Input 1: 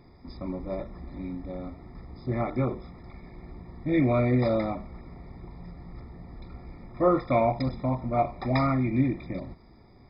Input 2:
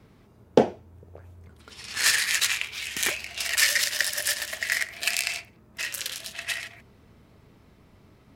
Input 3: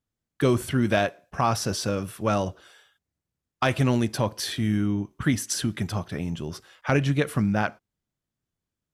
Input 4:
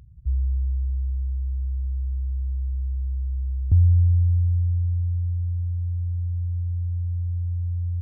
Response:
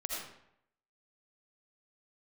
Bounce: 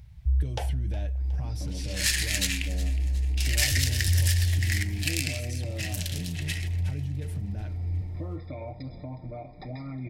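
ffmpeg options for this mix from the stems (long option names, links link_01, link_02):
-filter_complex "[0:a]alimiter=limit=-18dB:level=0:latency=1:release=311,acompressor=threshold=-36dB:ratio=2.5,adelay=1200,volume=-1dB,asplit=2[link_01][link_02];[link_02]volume=-18dB[link_03];[1:a]highpass=frequency=810:width=0.5412,highpass=frequency=810:width=1.3066,volume=-3dB,asplit=3[link_04][link_05][link_06];[link_04]atrim=end=2.69,asetpts=PTS-STARTPTS,afade=type=out:start_time=2.686:duration=0.004:curve=hsin[link_07];[link_05]atrim=start=2.69:end=3.37,asetpts=PTS-STARTPTS,volume=0[link_08];[link_06]atrim=start=3.37,asetpts=PTS-STARTPTS,afade=type=in:duration=0.004:curve=hsin[link_09];[link_07][link_08][link_09]concat=n=3:v=0:a=1,asplit=2[link_10][link_11];[link_11]volume=-17dB[link_12];[2:a]equalizer=frequency=110:width=0.89:gain=13,alimiter=limit=-15.5dB:level=0:latency=1:release=57,volume=-13dB,asplit=2[link_13][link_14];[3:a]volume=0dB,asplit=2[link_15][link_16];[link_16]volume=-9dB[link_17];[link_14]apad=whole_len=353615[link_18];[link_15][link_18]sidechaincompress=threshold=-45dB:ratio=8:attack=42:release=436[link_19];[link_01][link_13]amix=inputs=2:normalize=0,aecho=1:1:6.6:0.64,alimiter=level_in=4.5dB:limit=-24dB:level=0:latency=1:release=72,volume=-4.5dB,volume=0dB[link_20];[link_03][link_12][link_17]amix=inputs=3:normalize=0,aecho=0:1:364|728|1092|1456|1820|2184:1|0.46|0.212|0.0973|0.0448|0.0206[link_21];[link_10][link_19][link_20][link_21]amix=inputs=4:normalize=0,equalizer=frequency=1200:width=2:gain=-14"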